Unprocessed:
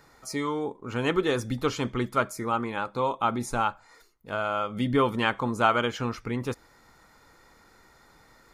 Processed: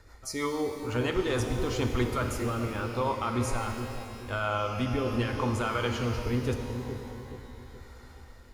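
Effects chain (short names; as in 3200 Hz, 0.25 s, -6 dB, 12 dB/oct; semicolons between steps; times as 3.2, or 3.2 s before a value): resonant low shelf 110 Hz +12 dB, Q 3; limiter -19.5 dBFS, peak gain reduction 11.5 dB; rotary speaker horn 6.3 Hz, later 0.85 Hz, at 0.78; analogue delay 0.422 s, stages 2048, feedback 42%, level -7 dB; shimmer reverb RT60 2.3 s, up +12 st, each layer -8 dB, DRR 5.5 dB; gain +1.5 dB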